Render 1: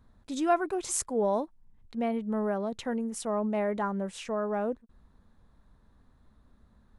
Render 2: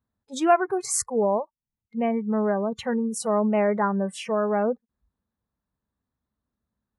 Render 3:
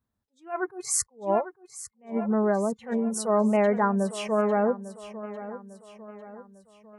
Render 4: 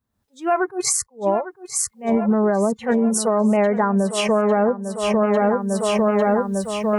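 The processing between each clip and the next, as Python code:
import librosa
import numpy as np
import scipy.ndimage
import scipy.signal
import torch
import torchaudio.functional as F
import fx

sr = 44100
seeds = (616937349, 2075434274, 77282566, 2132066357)

y1 = fx.rider(x, sr, range_db=4, speed_s=2.0)
y1 = fx.noise_reduce_blind(y1, sr, reduce_db=26)
y1 = scipy.signal.sosfilt(scipy.signal.butter(2, 70.0, 'highpass', fs=sr, output='sos'), y1)
y1 = F.gain(torch.from_numpy(y1), 6.5).numpy()
y2 = fx.echo_feedback(y1, sr, ms=850, feedback_pct=46, wet_db=-14.5)
y2 = fx.attack_slew(y2, sr, db_per_s=220.0)
y3 = fx.recorder_agc(y2, sr, target_db=-12.0, rise_db_per_s=47.0, max_gain_db=30)
y3 = F.gain(torch.from_numpy(y3), 1.0).numpy()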